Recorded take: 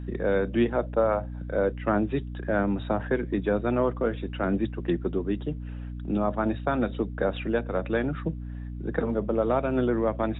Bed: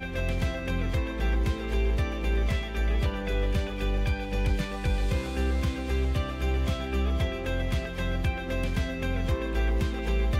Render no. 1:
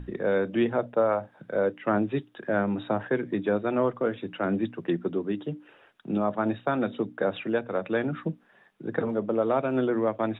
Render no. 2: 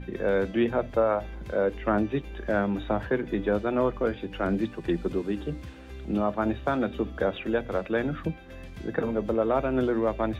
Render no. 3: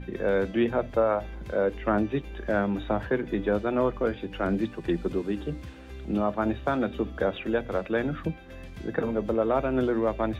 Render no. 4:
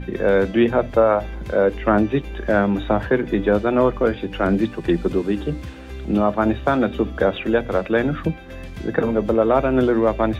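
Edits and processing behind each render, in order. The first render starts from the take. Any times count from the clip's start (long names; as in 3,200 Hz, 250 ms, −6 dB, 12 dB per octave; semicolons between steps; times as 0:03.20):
mains-hum notches 60/120/180/240/300 Hz
mix in bed −14 dB
no processing that can be heard
level +8 dB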